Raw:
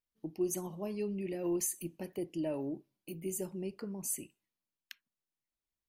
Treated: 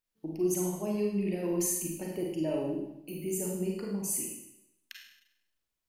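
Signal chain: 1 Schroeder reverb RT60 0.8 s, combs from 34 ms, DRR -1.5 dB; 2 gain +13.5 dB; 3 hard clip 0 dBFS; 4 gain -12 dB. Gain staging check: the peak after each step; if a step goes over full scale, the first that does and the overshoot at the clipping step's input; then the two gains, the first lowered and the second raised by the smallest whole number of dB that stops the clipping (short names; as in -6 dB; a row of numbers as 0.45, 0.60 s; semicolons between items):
-19.0, -5.5, -5.5, -17.5 dBFS; no overload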